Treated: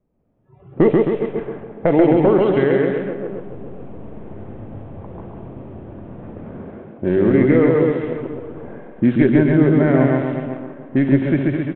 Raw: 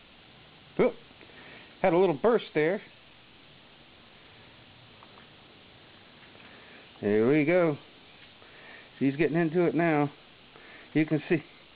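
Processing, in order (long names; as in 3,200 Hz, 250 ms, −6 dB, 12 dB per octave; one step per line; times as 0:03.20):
feedback delay that plays each chunk backwards 208 ms, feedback 42%, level −10 dB
in parallel at −0.5 dB: downward compressor, threshold −33 dBFS, peak gain reduction 13.5 dB
on the sum: pitch shifter −2 semitones
tilt shelving filter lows +4.5 dB, about 1,100 Hz
notch filter 2,900 Hz, Q 27
loudspeakers that aren't time-aligned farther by 47 metres −2 dB, 91 metres −7 dB
on a send at −17.5 dB: convolution reverb, pre-delay 35 ms
on the sum: low-pass that shuts in the quiet parts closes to 530 Hz, open at −14.5 dBFS
automatic gain control gain up to 11 dB
noise reduction from a noise print of the clip's start 20 dB
level −1 dB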